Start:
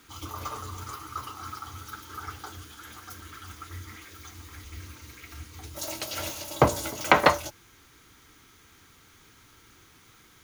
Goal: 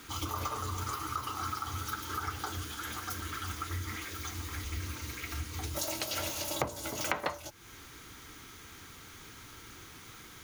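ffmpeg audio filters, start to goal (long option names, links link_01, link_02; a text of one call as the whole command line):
ffmpeg -i in.wav -af "acompressor=threshold=-38dB:ratio=6,volume=6dB" out.wav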